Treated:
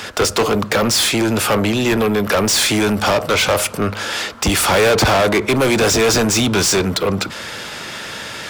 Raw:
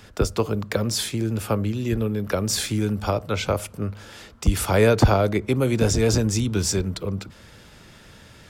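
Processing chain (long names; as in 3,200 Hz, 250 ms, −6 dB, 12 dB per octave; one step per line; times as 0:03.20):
mid-hump overdrive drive 31 dB, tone 7,300 Hz, clips at −5 dBFS
level −2 dB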